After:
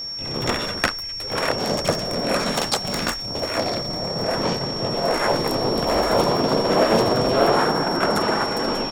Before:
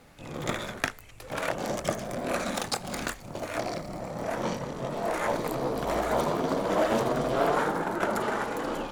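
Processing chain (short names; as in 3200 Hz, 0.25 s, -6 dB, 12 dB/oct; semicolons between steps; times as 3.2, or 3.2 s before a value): harmoniser -4 st -3 dB; whine 5500 Hz -34 dBFS; gain +6 dB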